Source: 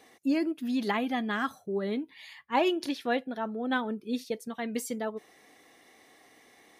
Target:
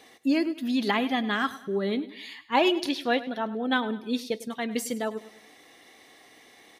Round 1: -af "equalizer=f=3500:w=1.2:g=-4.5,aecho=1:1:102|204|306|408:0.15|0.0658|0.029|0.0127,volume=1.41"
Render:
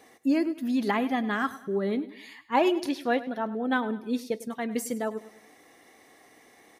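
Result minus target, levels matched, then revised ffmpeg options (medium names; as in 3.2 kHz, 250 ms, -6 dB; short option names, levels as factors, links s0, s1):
4 kHz band -7.5 dB
-af "equalizer=f=3500:w=1.2:g=5,aecho=1:1:102|204|306|408:0.15|0.0658|0.029|0.0127,volume=1.41"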